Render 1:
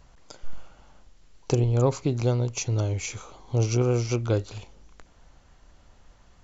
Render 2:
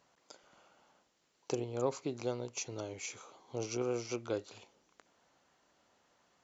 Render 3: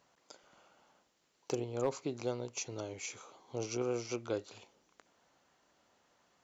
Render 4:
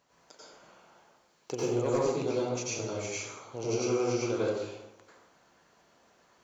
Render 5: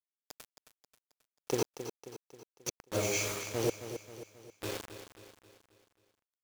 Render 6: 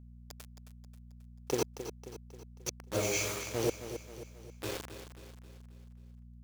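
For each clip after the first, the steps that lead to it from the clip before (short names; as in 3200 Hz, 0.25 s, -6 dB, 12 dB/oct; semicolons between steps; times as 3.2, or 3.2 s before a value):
HPF 270 Hz 12 dB/oct; gain -8.5 dB
overloaded stage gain 23 dB
plate-style reverb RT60 1 s, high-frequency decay 0.6×, pre-delay 80 ms, DRR -8 dB; gain -1 dB
flipped gate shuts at -23 dBFS, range -39 dB; bit-crush 7-bit; feedback echo 0.268 s, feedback 49%, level -10.5 dB; gain +4 dB
buzz 60 Hz, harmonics 4, -52 dBFS -6 dB/oct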